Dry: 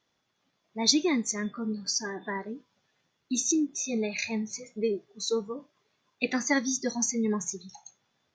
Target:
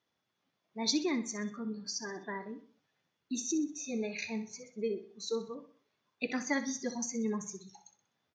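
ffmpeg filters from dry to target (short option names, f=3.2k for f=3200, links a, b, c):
-filter_complex "[0:a]highpass=62,highshelf=f=7.9k:g=-10,asplit=2[a][b];[b]aecho=0:1:63|126|189|252:0.237|0.0996|0.0418|0.0176[c];[a][c]amix=inputs=2:normalize=0,volume=-6dB"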